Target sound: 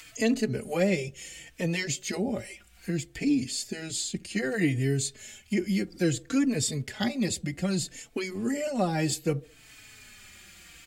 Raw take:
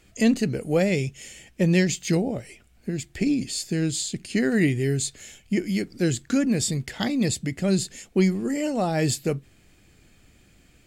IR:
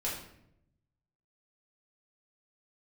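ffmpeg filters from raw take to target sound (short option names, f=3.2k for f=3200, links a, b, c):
-filter_complex "[0:a]acrossover=split=320|1000[a][b][c];[a]alimiter=limit=-22.5dB:level=0:latency=1[d];[b]aecho=1:1:70|140|210:0.15|0.0584|0.0228[e];[c]acompressor=mode=upward:threshold=-34dB:ratio=2.5[f];[d][e][f]amix=inputs=3:normalize=0,asplit=2[g][h];[h]adelay=4,afreqshift=-0.63[i];[g][i]amix=inputs=2:normalize=1"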